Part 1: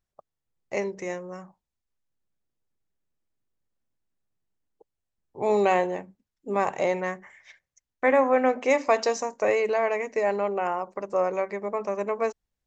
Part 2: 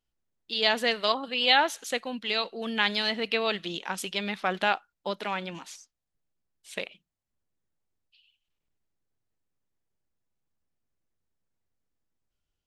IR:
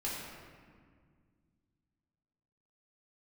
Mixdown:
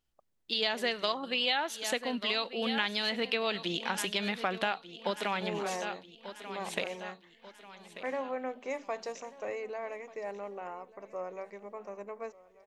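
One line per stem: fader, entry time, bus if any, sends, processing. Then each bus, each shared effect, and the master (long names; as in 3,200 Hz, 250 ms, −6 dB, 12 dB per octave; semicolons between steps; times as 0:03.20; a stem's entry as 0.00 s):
−14.5 dB, 0.00 s, no send, echo send −20 dB, no processing
+2.0 dB, 0.00 s, no send, echo send −15 dB, no processing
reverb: not used
echo: repeating echo 1,189 ms, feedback 41%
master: downward compressor 4 to 1, threshold −28 dBFS, peak gain reduction 12 dB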